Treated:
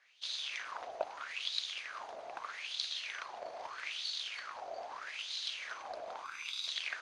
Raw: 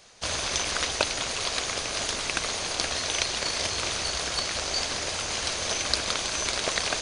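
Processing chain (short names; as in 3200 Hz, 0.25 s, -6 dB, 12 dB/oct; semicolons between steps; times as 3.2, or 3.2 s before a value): 6.24–6.68 minimum comb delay 0.81 ms; wah 0.79 Hz 660–3900 Hz, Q 5.9; gain -1 dB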